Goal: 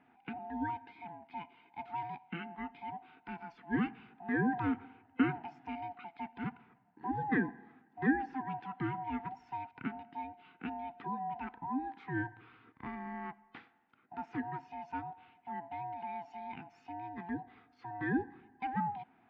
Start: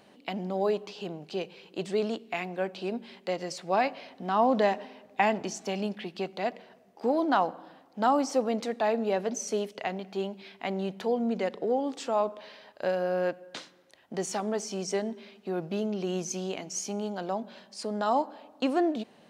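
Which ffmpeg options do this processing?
-af "afftfilt=real='real(if(lt(b,1008),b+24*(1-2*mod(floor(b/24),2)),b),0)':imag='imag(if(lt(b,1008),b+24*(1-2*mod(floor(b/24),2)),b),0)':win_size=2048:overlap=0.75,highpass=190,equalizer=f=260:t=q:w=4:g=6,equalizer=f=430:t=q:w=4:g=-6,equalizer=f=700:t=q:w=4:g=-5,equalizer=f=1000:t=q:w=4:g=-7,lowpass=f=2200:w=0.5412,lowpass=f=2200:w=1.3066,volume=0.562"

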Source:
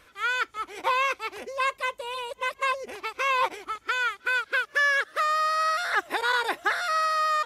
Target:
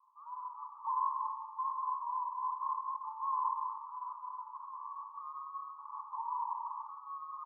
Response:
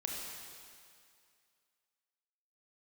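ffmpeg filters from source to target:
-filter_complex "[0:a]asoftclip=type=hard:threshold=0.0316,tremolo=f=150:d=0.571,asuperpass=centerf=1000:order=12:qfactor=3.4,asplit=2[s0][s1];[s1]adelay=1399,volume=0.251,highshelf=f=4000:g=-31.5[s2];[s0][s2]amix=inputs=2:normalize=0[s3];[1:a]atrim=start_sample=2205,afade=t=out:st=0.45:d=0.01,atrim=end_sample=20286[s4];[s3][s4]afir=irnorm=-1:irlink=0,volume=1.5"

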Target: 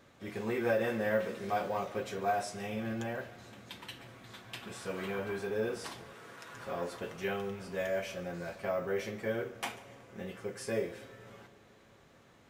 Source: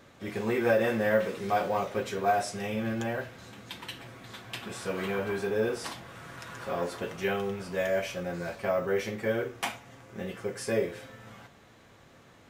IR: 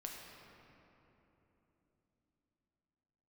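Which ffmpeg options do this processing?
-filter_complex "[0:a]asettb=1/sr,asplit=3[s0][s1][s2];[s0]atrim=end=6.134[s3];[s1]atrim=start=6.13:end=6.54,asetpts=PTS-STARTPTS,afade=t=in:d=0.004:c=qsin,afade=t=out:st=0.406:d=0.004:c=qsin,highpass=240[s4];[s2]atrim=start=6.536[s5];[s3][s4]acrossfade=d=0.004:c1=hsin:c2=qsin[s6];[s6][s5]acrossfade=d=0.004:c1=qsin:c2=hsin,asplit=2[s7][s8];[1:a]atrim=start_sample=2205,adelay=142[s9];[s8][s9]afir=irnorm=-1:irlink=0,volume=0.188[s10];[s7][s10]amix=inputs=2:normalize=0,volume=0.531"

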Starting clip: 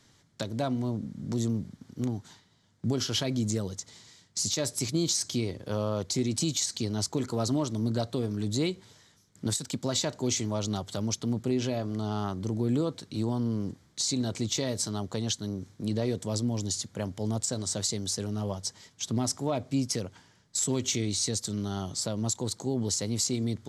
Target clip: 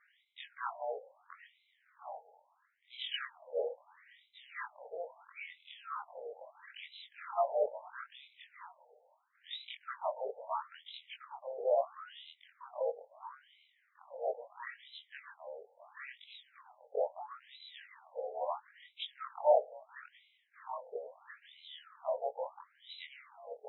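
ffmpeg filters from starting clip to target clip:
-af "afftfilt=real='re':imag='-im':win_size=2048:overlap=0.75,highshelf=f=2100:g=-11,afftfilt=real='re*between(b*sr/1024,600*pow(2900/600,0.5+0.5*sin(2*PI*0.75*pts/sr))/1.41,600*pow(2900/600,0.5+0.5*sin(2*PI*0.75*pts/sr))*1.41)':imag='im*between(b*sr/1024,600*pow(2900/600,0.5+0.5*sin(2*PI*0.75*pts/sr))/1.41,600*pow(2900/600,0.5+0.5*sin(2*PI*0.75*pts/sr))*1.41)':win_size=1024:overlap=0.75,volume=3.76"

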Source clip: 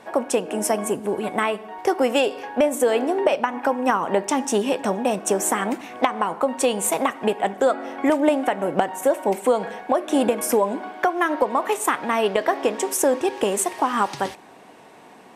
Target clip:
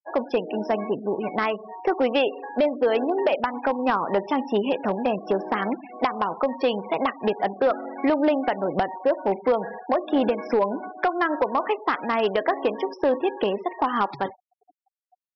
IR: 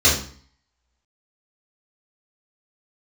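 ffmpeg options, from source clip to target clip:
-af "afftfilt=real='re*gte(hypot(re,im),0.0355)':imag='im*gte(hypot(re,im),0.0355)':win_size=1024:overlap=0.75,aresample=11025,asoftclip=type=hard:threshold=0.237,aresample=44100,volume=0.841"

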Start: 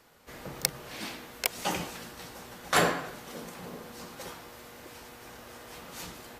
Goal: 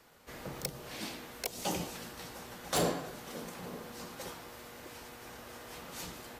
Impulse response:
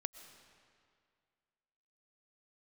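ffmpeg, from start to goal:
-filter_complex "[0:a]acrossover=split=870|3100[s0][s1][s2];[s1]acompressor=threshold=0.00447:ratio=6[s3];[s0][s3][s2]amix=inputs=3:normalize=0,volume=15,asoftclip=hard,volume=0.0668,volume=0.891"

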